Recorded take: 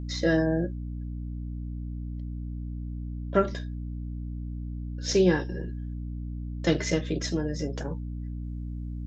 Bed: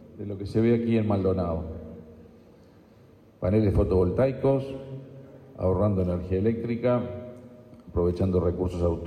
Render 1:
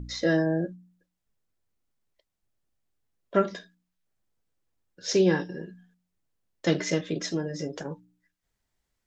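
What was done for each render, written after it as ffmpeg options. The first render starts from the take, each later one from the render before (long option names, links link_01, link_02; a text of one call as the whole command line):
ffmpeg -i in.wav -af "bandreject=frequency=60:width_type=h:width=4,bandreject=frequency=120:width_type=h:width=4,bandreject=frequency=180:width_type=h:width=4,bandreject=frequency=240:width_type=h:width=4,bandreject=frequency=300:width_type=h:width=4" out.wav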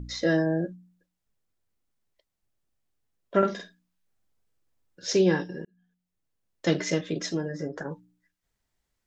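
ffmpeg -i in.wav -filter_complex "[0:a]asettb=1/sr,asplit=3[link_01][link_02][link_03];[link_01]atrim=end=3.384[link_04];[link_02]atrim=start=3.38:end=5.07,asetpts=PTS-STARTPTS,afade=type=in:duration=0.004:curve=qsin,afade=type=out:start_time=1.686:duration=0.004:curve=qsin,asplit=2[link_05][link_06];[link_06]adelay=46,volume=-3dB[link_07];[link_05][link_07]amix=inputs=2:normalize=0,atrim=end_sample=74529[link_08];[link_03]atrim=start=5.066[link_09];[link_04][link_08]acrossfade=duration=0.004:curve1=hsin:curve2=qsin[link_10];[link_10][link_09]acrossfade=duration=0.004:curve1=qsin:curve2=hsin,asettb=1/sr,asplit=3[link_11][link_12][link_13];[link_11]atrim=end=7.484[link_14];[link_12]atrim=start=7.48:end=7.9,asetpts=PTS-STARTPTS,afade=type=in:duration=0.004:curve=qsin,afade=type=out:start_time=0.416:duration=0.004:curve=qsin,highshelf=frequency=2100:width_type=q:width=3:gain=-8[link_15];[link_13]atrim=start=7.896[link_16];[link_14][link_15]acrossfade=duration=0.004:curve1=hsin:curve2=qsin[link_17];[link_17][link_16]acrossfade=duration=0.004:curve1=qsin:curve2=hsin,asplit=2[link_18][link_19];[link_18]atrim=end=5.65,asetpts=PTS-STARTPTS,afade=type=out:start_time=5.646:duration=0.004:curve=hsin[link_20];[link_19]atrim=start=5.65,asetpts=PTS-STARTPTS,afade=type=in:duration=1.08:curve=qsin[link_21];[link_20][link_21]concat=n=2:v=0:a=1" out.wav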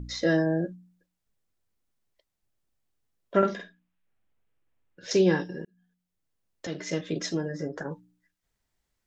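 ffmpeg -i in.wav -filter_complex "[0:a]asettb=1/sr,asplit=3[link_01][link_02][link_03];[link_01]atrim=end=3.554[link_04];[link_02]atrim=start=3.55:end=5.11,asetpts=PTS-STARTPTS,afade=type=in:duration=0.004:curve=qsin,afade=type=out:start_time=1.556:duration=0.004:curve=qsin,highshelf=frequency=3600:width_type=q:width=1.5:gain=-9[link_05];[link_03]atrim=start=5.106[link_06];[link_04][link_05]acrossfade=duration=0.004:curve1=hsin:curve2=qsin[link_07];[link_07][link_06]acrossfade=duration=0.004:curve1=qsin:curve2=hsin,asplit=2[link_08][link_09];[link_08]atrim=end=6.67,asetpts=PTS-STARTPTS,afade=type=out:start_time=6.666:duration=0.004:curve=hsin:silence=0.211349[link_10];[link_09]atrim=start=6.67,asetpts=PTS-STARTPTS,afade=type=in:duration=0.48:silence=0.211349[link_11];[link_10][link_11]concat=n=2:v=0:a=1" out.wav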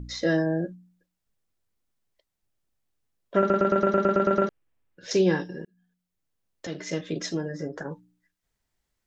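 ffmpeg -i in.wav -filter_complex "[0:a]asplit=11[link_01][link_02][link_03][link_04][link_05][link_06][link_07][link_08][link_09][link_10][link_11];[link_01]atrim=end=3.502[link_12];[link_02]atrim=start=3.388:end=3.502[link_13];[link_03]atrim=start=3.388:end=3.502[link_14];[link_04]atrim=start=3.388:end=3.502[link_15];[link_05]atrim=start=3.388:end=3.502[link_16];[link_06]atrim=start=3.388:end=3.502[link_17];[link_07]atrim=start=3.388:end=3.502[link_18];[link_08]atrim=start=3.388:end=3.502[link_19];[link_09]atrim=start=3.388:end=3.502[link_20];[link_10]atrim=start=3.388:end=3.502[link_21];[link_11]atrim=start=4.488[link_22];[link_12][link_13]acrossfade=duration=0.004:curve1=hsin:curve2=hsin[link_23];[link_23][link_14]acrossfade=duration=0.004:curve1=hsin:curve2=hsin[link_24];[link_24][link_15]acrossfade=duration=0.004:curve1=hsin:curve2=hsin[link_25];[link_25][link_16]acrossfade=duration=0.004:curve1=hsin:curve2=hsin[link_26];[link_26][link_17]acrossfade=duration=0.004:curve1=hsin:curve2=hsin[link_27];[link_27][link_18]acrossfade=duration=0.004:curve1=hsin:curve2=hsin[link_28];[link_28][link_19]acrossfade=duration=0.004:curve1=hsin:curve2=hsin[link_29];[link_29][link_20]acrossfade=duration=0.004:curve1=hsin:curve2=hsin[link_30];[link_30][link_21]acrossfade=duration=0.004:curve1=hsin:curve2=hsin[link_31];[link_31][link_22]acrossfade=duration=0.004:curve1=hsin:curve2=hsin" out.wav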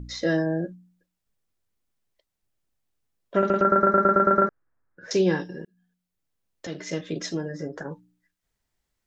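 ffmpeg -i in.wav -filter_complex "[0:a]asettb=1/sr,asplit=3[link_01][link_02][link_03];[link_01]atrim=end=3.624[link_04];[link_02]atrim=start=3.62:end=5.11,asetpts=PTS-STARTPTS,afade=type=in:duration=0.004:curve=qsin,afade=type=out:start_time=1.486:duration=0.004:curve=qsin,highshelf=frequency=2200:width_type=q:width=3:gain=-13[link_05];[link_03]atrim=start=5.106[link_06];[link_04][link_05]acrossfade=duration=0.004:curve1=hsin:curve2=qsin[link_07];[link_07][link_06]acrossfade=duration=0.004:curve1=qsin:curve2=hsin" out.wav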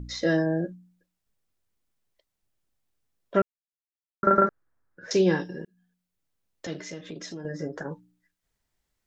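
ffmpeg -i in.wav -filter_complex "[0:a]asettb=1/sr,asplit=3[link_01][link_02][link_03];[link_01]atrim=end=6.794[link_04];[link_02]atrim=start=6.79:end=7.45,asetpts=PTS-STARTPTS,afade=type=in:duration=0.004:curve=qsin,afade=type=out:start_time=0.656:duration=0.004:curve=qsin,acompressor=threshold=-37dB:ratio=3:attack=3.2:release=140:knee=1:detection=peak[link_05];[link_03]atrim=start=7.446[link_06];[link_04][link_05]acrossfade=duration=0.004:curve1=hsin:curve2=qsin[link_07];[link_07][link_06]acrossfade=duration=0.004:curve1=qsin:curve2=hsin,asplit=3[link_08][link_09][link_10];[link_08]atrim=end=3.42,asetpts=PTS-STARTPTS,afade=type=out:start_time=3.416:duration=0.004:curve=hsin[link_11];[link_09]atrim=start=3.42:end=4.23,asetpts=PTS-STARTPTS,volume=0[link_12];[link_10]atrim=start=4.23,asetpts=PTS-STARTPTS,afade=type=in:duration=0.004:curve=hsin[link_13];[link_11][link_12][link_13]concat=n=3:v=0:a=1" out.wav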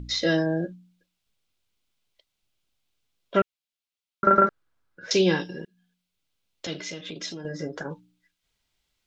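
ffmpeg -i in.wav -af "equalizer=frequency=3300:width_type=o:width=1.6:gain=10.5,bandreject=frequency=1800:width=9" out.wav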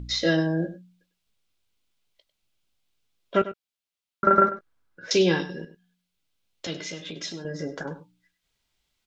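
ffmpeg -i in.wav -filter_complex "[0:a]asplit=2[link_01][link_02];[link_02]adelay=18,volume=-13.5dB[link_03];[link_01][link_03]amix=inputs=2:normalize=0,asplit=2[link_04][link_05];[link_05]adelay=99.13,volume=-14dB,highshelf=frequency=4000:gain=-2.23[link_06];[link_04][link_06]amix=inputs=2:normalize=0" out.wav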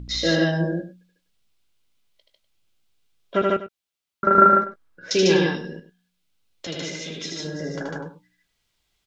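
ffmpeg -i in.wav -af "aecho=1:1:78.72|148.7:0.708|0.891" out.wav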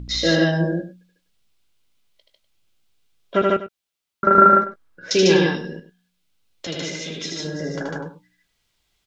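ffmpeg -i in.wav -af "volume=2.5dB,alimiter=limit=-2dB:level=0:latency=1" out.wav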